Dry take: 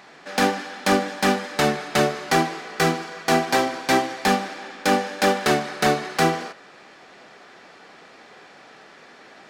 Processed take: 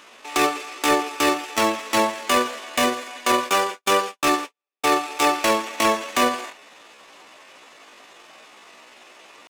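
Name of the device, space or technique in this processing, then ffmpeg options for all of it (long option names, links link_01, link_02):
chipmunk voice: -filter_complex "[0:a]asetrate=66075,aresample=44100,atempo=0.66742,asettb=1/sr,asplit=3[link_01][link_02][link_03];[link_01]atrim=end=3.324[link_04];[link_02]atrim=start=3.32:end=4.96,asetpts=PTS-STARTPTS,afade=type=in:duration=0.004:curve=qsin,afade=type=out:start_time=1.636:duration=0.004:curve=qsin,agate=range=-55dB:threshold=-27dB:ratio=16:detection=peak[link_05];[link_03]atrim=start=4.956[link_06];[link_04][link_05]acrossfade=duration=0.004:curve1=hsin:curve2=qsin[link_07];[link_07][link_06]acrossfade=duration=0.004:curve1=qsin:curve2=hsin"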